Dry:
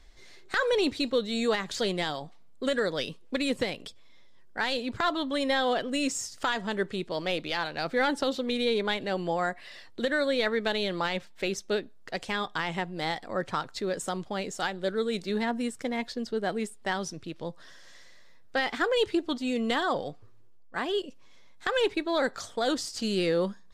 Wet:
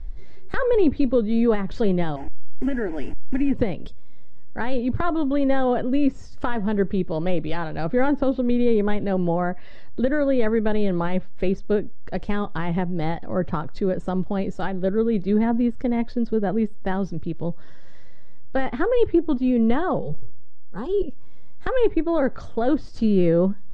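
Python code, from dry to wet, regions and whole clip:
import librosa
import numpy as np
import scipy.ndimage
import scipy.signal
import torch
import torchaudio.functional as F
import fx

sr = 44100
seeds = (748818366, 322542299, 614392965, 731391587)

y = fx.chain(x, sr, fx.delta_mod(bps=64000, step_db=-33.0),
    fx.fixed_phaser(hz=780.0, stages=8), at=(2.16, 3.54))
y = fx.chain(y, sr, fx.peak_eq(hz=1200.0, db=-6.0, octaves=1.1),
    fx.fixed_phaser(hz=440.0, stages=8),
    fx.sustainer(db_per_s=30.0), at=(19.99, 21.03))
y = fx.env_lowpass_down(y, sr, base_hz=2700.0, full_db=-25.0)
y = fx.tilt_eq(y, sr, slope=-4.5)
y = F.gain(torch.from_numpy(y), 1.5).numpy()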